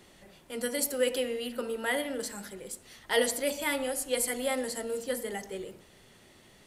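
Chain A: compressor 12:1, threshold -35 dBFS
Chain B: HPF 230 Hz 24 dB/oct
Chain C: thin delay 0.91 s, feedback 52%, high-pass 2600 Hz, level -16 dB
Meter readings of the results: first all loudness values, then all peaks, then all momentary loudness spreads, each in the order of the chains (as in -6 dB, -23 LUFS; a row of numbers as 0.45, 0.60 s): -39.5, -31.5, -31.5 LUFS; -20.5, -13.5, -12.5 dBFS; 17, 14, 14 LU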